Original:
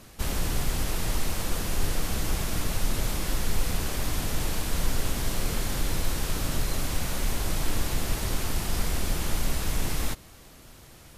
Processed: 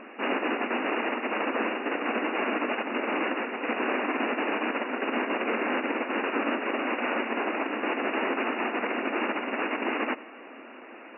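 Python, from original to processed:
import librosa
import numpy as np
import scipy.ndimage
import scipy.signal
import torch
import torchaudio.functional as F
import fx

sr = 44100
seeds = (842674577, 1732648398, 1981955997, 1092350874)

p1 = fx.over_compress(x, sr, threshold_db=-26.0, ratio=-0.5)
p2 = x + F.gain(torch.from_numpy(p1), 3.0).numpy()
p3 = fx.brickwall_bandpass(p2, sr, low_hz=220.0, high_hz=2900.0)
p4 = p3 + 10.0 ** (-20.5 / 20.0) * np.pad(p3, (int(98 * sr / 1000.0), 0))[:len(p3)]
y = F.gain(torch.from_numpy(p4), 1.0).numpy()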